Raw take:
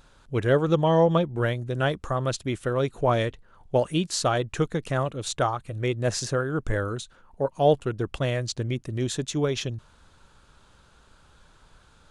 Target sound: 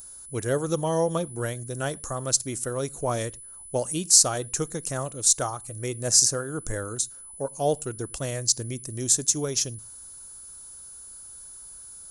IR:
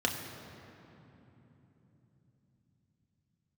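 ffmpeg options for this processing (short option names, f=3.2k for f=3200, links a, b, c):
-filter_complex "[0:a]asplit=2[a][b];[1:a]atrim=start_sample=2205,afade=t=out:st=0.16:d=0.01,atrim=end_sample=7497[c];[b][c]afir=irnorm=-1:irlink=0,volume=-25dB[d];[a][d]amix=inputs=2:normalize=0,aexciter=amount=11.2:drive=5.3:freq=5k,aeval=exprs='val(0)+0.0158*sin(2*PI*10000*n/s)':c=same,volume=-5.5dB"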